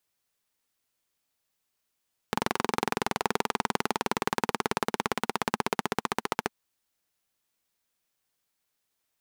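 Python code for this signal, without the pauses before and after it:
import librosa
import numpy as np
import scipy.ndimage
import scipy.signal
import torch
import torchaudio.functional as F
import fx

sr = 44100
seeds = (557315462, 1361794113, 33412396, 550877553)

y = fx.engine_single_rev(sr, seeds[0], length_s=4.2, rpm=2700, resonances_hz=(230.0, 420.0, 840.0), end_rpm=1700)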